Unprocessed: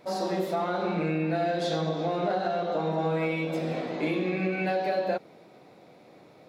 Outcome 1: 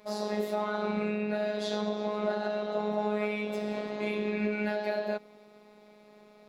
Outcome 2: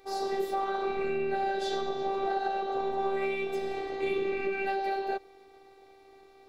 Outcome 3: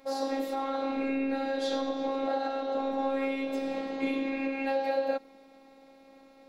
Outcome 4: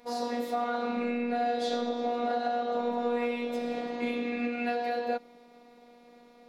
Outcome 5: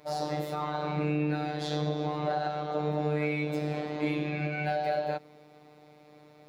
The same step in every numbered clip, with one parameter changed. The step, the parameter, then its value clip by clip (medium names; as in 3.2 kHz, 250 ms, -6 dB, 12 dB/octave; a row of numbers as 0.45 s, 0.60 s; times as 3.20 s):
robot voice, frequency: 210 Hz, 390 Hz, 270 Hz, 240 Hz, 150 Hz